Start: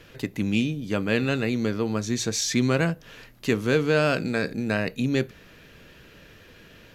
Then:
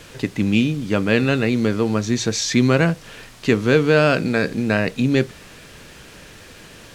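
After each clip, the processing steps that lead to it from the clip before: word length cut 8-bit, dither triangular; distance through air 56 m; trim +6.5 dB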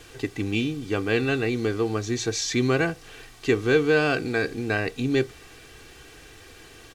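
comb 2.6 ms, depth 67%; trim -6.5 dB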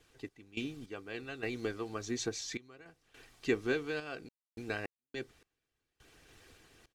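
harmonic-percussive split harmonic -10 dB; random-step tremolo, depth 100%; trim -6.5 dB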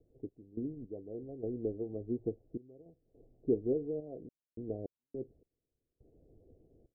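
steep low-pass 620 Hz 48 dB/octave; trim +1.5 dB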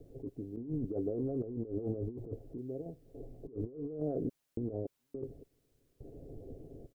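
comb 7.3 ms, depth 31%; compressor with a negative ratio -46 dBFS, ratio -1; trim +7 dB

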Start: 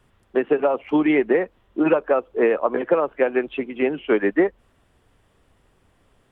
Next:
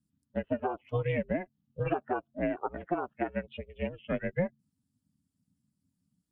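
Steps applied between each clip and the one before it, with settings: expander on every frequency bin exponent 1.5; ring modulator 180 Hz; trim -7.5 dB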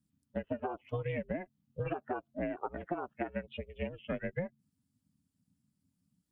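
compression 5:1, threshold -32 dBFS, peak gain reduction 8.5 dB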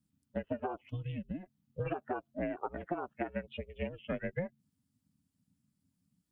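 time-frequency box 0.90–1.43 s, 330–2500 Hz -16 dB

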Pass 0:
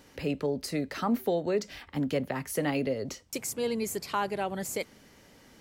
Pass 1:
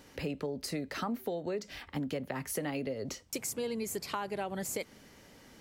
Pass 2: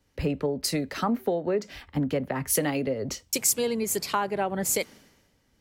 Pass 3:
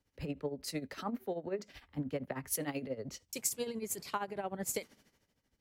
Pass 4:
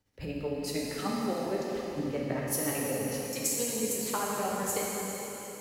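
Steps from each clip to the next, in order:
compression, threshold -32 dBFS, peak gain reduction 9.5 dB
three bands expanded up and down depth 100%; trim +8.5 dB
tremolo 13 Hz, depth 73%; trim -8 dB
plate-style reverb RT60 4.1 s, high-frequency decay 0.95×, DRR -4.5 dB; trim +1.5 dB

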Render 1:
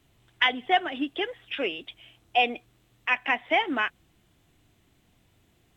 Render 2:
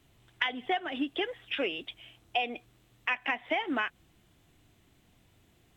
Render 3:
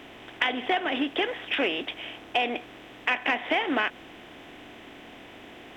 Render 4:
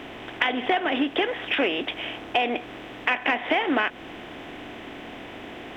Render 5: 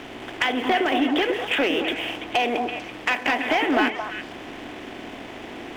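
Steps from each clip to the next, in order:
compression 10:1, threshold -26 dBFS, peak gain reduction 10.5 dB
spectral levelling over time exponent 0.6; in parallel at -10 dB: hard clipper -20 dBFS, distortion -18 dB
treble shelf 4 kHz -7 dB; in parallel at +3 dB: compression, threshold -33 dBFS, peak gain reduction 11.5 dB
waveshaping leveller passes 2; repeats whose band climbs or falls 111 ms, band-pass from 320 Hz, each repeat 1.4 oct, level -1 dB; trim -5.5 dB

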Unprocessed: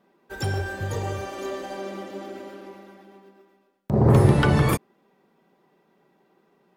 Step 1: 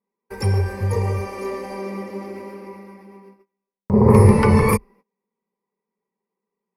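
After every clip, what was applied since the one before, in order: rippled EQ curve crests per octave 0.88, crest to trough 14 dB; gate -49 dBFS, range -26 dB; peaking EQ 3.9 kHz -10 dB 0.72 oct; trim +2.5 dB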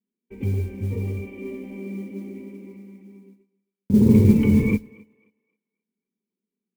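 cascade formant filter i; thinning echo 266 ms, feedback 27%, high-pass 330 Hz, level -22 dB; modulation noise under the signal 31 dB; trim +7 dB

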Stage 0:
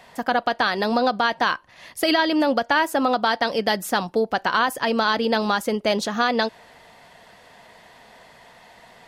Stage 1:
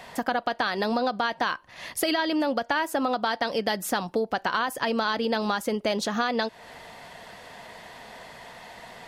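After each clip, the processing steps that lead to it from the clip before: compression 2.5:1, threshold -32 dBFS, peak gain reduction 11.5 dB; trim +4.5 dB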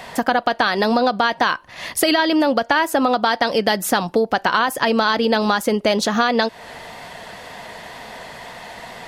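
wow and flutter 20 cents; trim +8.5 dB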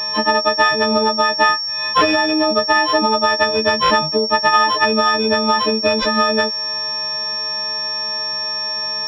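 partials quantised in pitch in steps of 6 st; class-D stage that switches slowly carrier 5.5 kHz; trim -1 dB

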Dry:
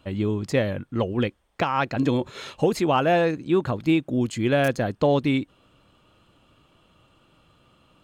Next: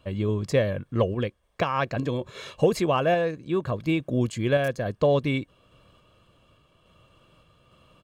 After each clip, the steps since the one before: peaking EQ 200 Hz +2.5 dB 2.4 oct; comb 1.8 ms, depth 44%; random-step tremolo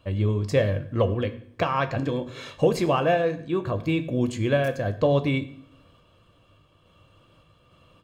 peaking EQ 10 kHz -3 dB 1.1 oct; reverberation RT60 0.65 s, pre-delay 5 ms, DRR 7.5 dB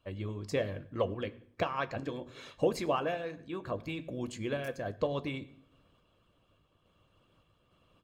harmonic-percussive split harmonic -10 dB; trim -6 dB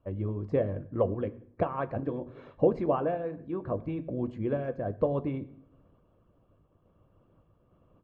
Bessel low-pass 740 Hz, order 2; trim +6 dB

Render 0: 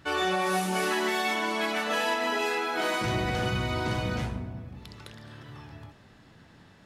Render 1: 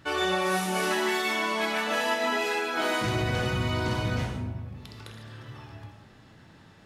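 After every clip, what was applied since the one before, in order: gated-style reverb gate 170 ms flat, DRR 5 dB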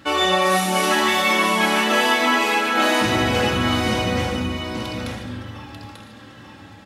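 high-pass 77 Hz; comb 3.7 ms, depth 58%; on a send: delay 891 ms -6.5 dB; on the sum: trim +7.5 dB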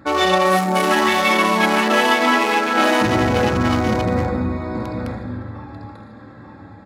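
local Wiener filter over 15 samples; trim +3.5 dB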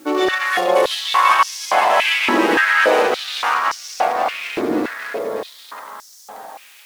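in parallel at -6.5 dB: word length cut 6-bit, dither triangular; on the sum: ever faster or slower copies 340 ms, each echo -1 st, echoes 3; step-sequenced high-pass 3.5 Hz 320–5600 Hz; trim -8.5 dB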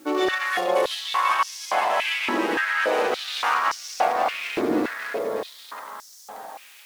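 gain riding within 3 dB 0.5 s; trim -6 dB

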